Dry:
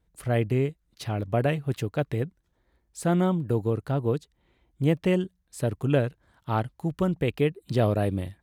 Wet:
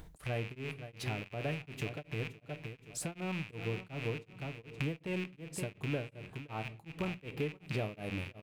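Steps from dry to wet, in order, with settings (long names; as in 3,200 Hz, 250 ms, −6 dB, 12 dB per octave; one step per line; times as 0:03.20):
loose part that buzzes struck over −39 dBFS, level −19 dBFS
parametric band 830 Hz +2.5 dB 0.39 octaves
on a send: repeating echo 521 ms, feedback 23%, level −14 dB
on the sum: upward compression, threshold −44 dBFS
rectangular room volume 220 cubic metres, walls furnished, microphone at 0.47 metres
downward compressor 3 to 1, threshold −42 dBFS, peak gain reduction 19.5 dB
tremolo along a rectified sine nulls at 2.7 Hz
level +3.5 dB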